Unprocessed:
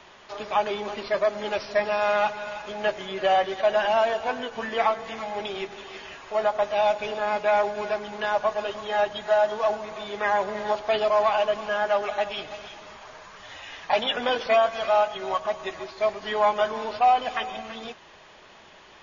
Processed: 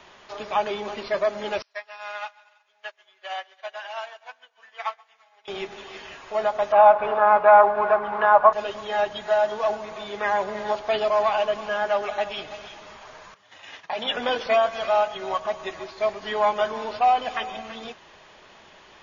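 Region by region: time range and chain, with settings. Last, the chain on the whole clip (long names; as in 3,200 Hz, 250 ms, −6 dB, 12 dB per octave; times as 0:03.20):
0:01.62–0:05.48: high-pass filter 1,100 Hz + echo with a time of its own for lows and highs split 720 Hz, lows 192 ms, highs 132 ms, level −12 dB + expander for the loud parts 2.5 to 1, over −42 dBFS
0:06.72–0:08.53: drawn EQ curve 320 Hz 0 dB, 1,200 Hz +14 dB, 1,900 Hz +1 dB, 5,300 Hz −18 dB, 7,800 Hz −29 dB + one half of a high-frequency compander encoder only
0:13.34–0:14.08: noise gate −42 dBFS, range −14 dB + high-pass filter 94 Hz 24 dB per octave + downward compressor 3 to 1, threshold −26 dBFS
whole clip: no processing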